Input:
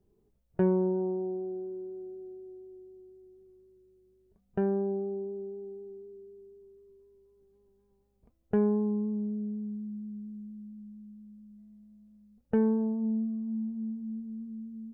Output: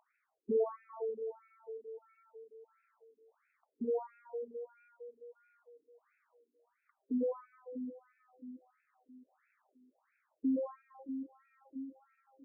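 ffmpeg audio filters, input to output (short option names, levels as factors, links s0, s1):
-filter_complex "[0:a]aemphasis=mode=production:type=riaa,acrossover=split=390[s0][s1];[s1]acompressor=mode=upward:threshold=0.00562:ratio=2.5[s2];[s0][s2]amix=inputs=2:normalize=0,aeval=exprs='sgn(val(0))*max(abs(val(0))-0.001,0)':c=same,asetrate=52920,aresample=44100,afftfilt=real='re*between(b*sr/1024,300*pow(1900/300,0.5+0.5*sin(2*PI*1.5*pts/sr))/1.41,300*pow(1900/300,0.5+0.5*sin(2*PI*1.5*pts/sr))*1.41)':imag='im*between(b*sr/1024,300*pow(1900/300,0.5+0.5*sin(2*PI*1.5*pts/sr))/1.41,300*pow(1900/300,0.5+0.5*sin(2*PI*1.5*pts/sr))*1.41)':win_size=1024:overlap=0.75,volume=1.5"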